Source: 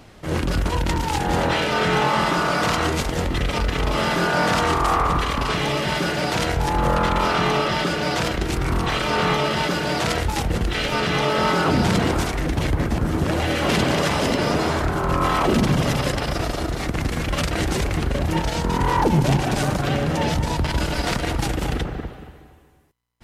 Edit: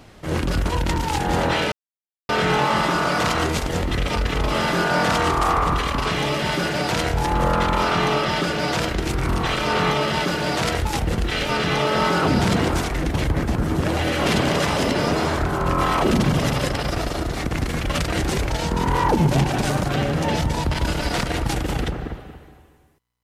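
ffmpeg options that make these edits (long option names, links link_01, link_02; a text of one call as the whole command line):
ffmpeg -i in.wav -filter_complex "[0:a]asplit=3[link_01][link_02][link_03];[link_01]atrim=end=1.72,asetpts=PTS-STARTPTS,afade=type=out:start_time=1.716:duration=0.004:curve=hsin,apad=pad_dur=0.57[link_04];[link_02]atrim=start=1.72:end=17.932,asetpts=PTS-STARTPTS,afade=type=in:duration=0.004:curve=hsin[link_05];[link_03]atrim=start=18.428[link_06];[link_04][link_05]concat=n=2:v=0:a=1[link_07];[link_07][link_06]acrossfade=duration=0.004:curve1=hsin:curve2=hsin" out.wav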